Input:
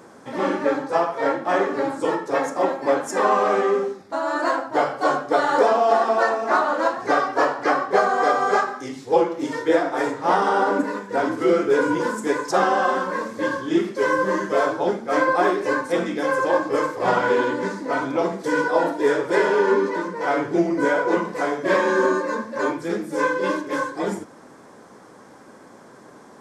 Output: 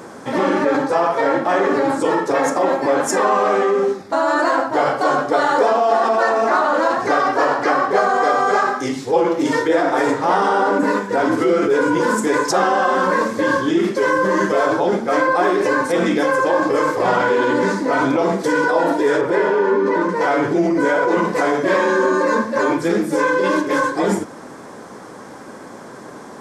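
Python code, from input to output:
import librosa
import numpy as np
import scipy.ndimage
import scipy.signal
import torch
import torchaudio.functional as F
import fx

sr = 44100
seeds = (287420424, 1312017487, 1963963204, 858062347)

p1 = fx.over_compress(x, sr, threshold_db=-26.0, ratio=-1.0)
p2 = x + (p1 * 10.0 ** (2.0 / 20.0))
y = fx.high_shelf(p2, sr, hz=3200.0, db=-11.0, at=(19.21, 20.09))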